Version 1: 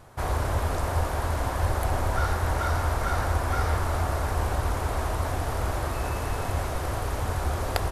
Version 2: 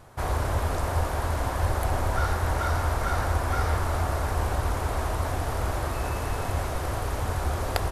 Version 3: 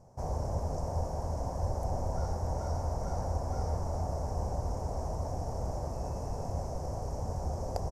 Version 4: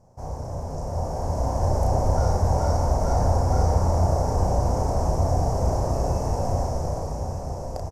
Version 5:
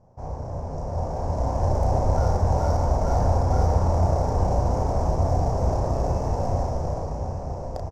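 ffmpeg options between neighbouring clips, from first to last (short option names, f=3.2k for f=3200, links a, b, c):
-af anull
-af "firequalizer=gain_entry='entry(110,0);entry(160,7);entry(330,-4);entry(520,3);entry(880,-1);entry(1300,-17);entry(3700,-23);entry(5500,3);entry(10000,-14)':delay=0.05:min_phase=1,volume=-7dB"
-filter_complex "[0:a]dynaudnorm=f=220:g=11:m=10.5dB,asplit=2[a][b];[b]adelay=33,volume=-4dB[c];[a][c]amix=inputs=2:normalize=0,aecho=1:1:1194:0.266"
-af "adynamicsmooth=sensitivity=6.5:basefreq=4k"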